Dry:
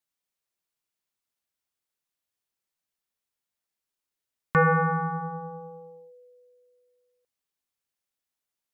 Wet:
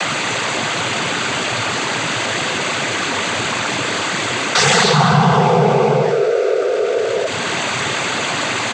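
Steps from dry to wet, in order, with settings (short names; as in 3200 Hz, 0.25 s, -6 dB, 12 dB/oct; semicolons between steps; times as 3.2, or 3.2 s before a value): Wiener smoothing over 9 samples; in parallel at -0.5 dB: upward compressor, threshold -26 dBFS; on the sum: formant shift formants +2 st; sine folder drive 17 dB, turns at -5.5 dBFS; power-law curve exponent 0.5; noise vocoder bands 16; on a send: echo 0.191 s -15.5 dB; on the sum: fast leveller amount 50%; gain -7 dB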